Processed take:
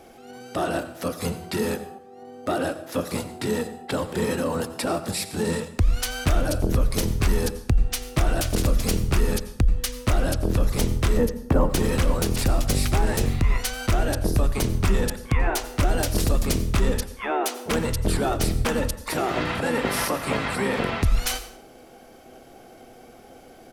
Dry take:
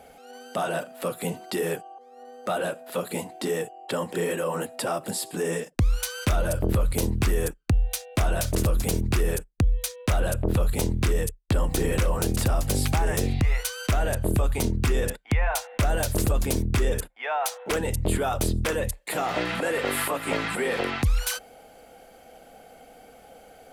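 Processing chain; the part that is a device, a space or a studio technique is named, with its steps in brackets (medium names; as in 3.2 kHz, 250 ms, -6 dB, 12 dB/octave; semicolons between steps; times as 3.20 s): 11.17–11.70 s: ten-band graphic EQ 125 Hz -5 dB, 250 Hz +8 dB, 500 Hz +6 dB, 1 kHz +7 dB, 4 kHz -11 dB, 8 kHz -9 dB; octave pedal (harmony voices -12 st -2 dB); plate-style reverb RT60 0.66 s, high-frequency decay 0.75×, pre-delay 75 ms, DRR 12.5 dB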